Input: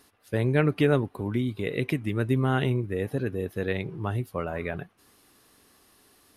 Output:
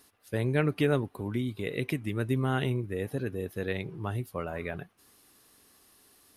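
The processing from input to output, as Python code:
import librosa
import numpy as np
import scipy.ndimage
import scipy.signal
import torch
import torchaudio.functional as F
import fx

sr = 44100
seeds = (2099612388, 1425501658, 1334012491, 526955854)

y = fx.high_shelf(x, sr, hz=4700.0, db=6.0)
y = y * 10.0 ** (-4.0 / 20.0)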